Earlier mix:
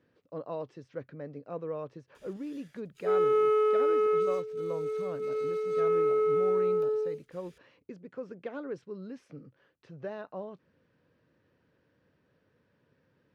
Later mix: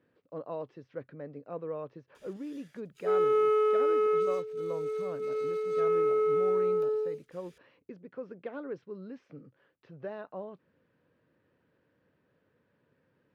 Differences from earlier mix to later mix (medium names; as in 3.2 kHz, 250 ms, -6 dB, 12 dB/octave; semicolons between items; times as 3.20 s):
speech: add distance through air 160 m; master: add bass shelf 120 Hz -6.5 dB